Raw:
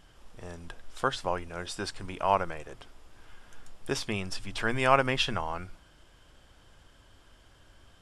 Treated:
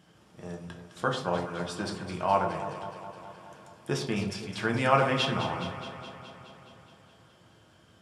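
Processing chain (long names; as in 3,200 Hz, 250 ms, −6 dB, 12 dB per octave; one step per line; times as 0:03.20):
high-pass filter 120 Hz 24 dB per octave
low-shelf EQ 220 Hz +10.5 dB
delay that swaps between a low-pass and a high-pass 105 ms, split 1,100 Hz, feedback 82%, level −8.5 dB
on a send at −2 dB: convolution reverb RT60 0.45 s, pre-delay 6 ms
on the sum: level −3.5 dB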